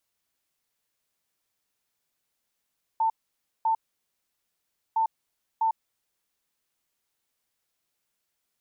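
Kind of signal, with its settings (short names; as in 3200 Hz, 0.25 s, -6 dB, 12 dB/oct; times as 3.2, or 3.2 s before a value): beep pattern sine 894 Hz, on 0.10 s, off 0.55 s, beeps 2, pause 1.21 s, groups 2, -20.5 dBFS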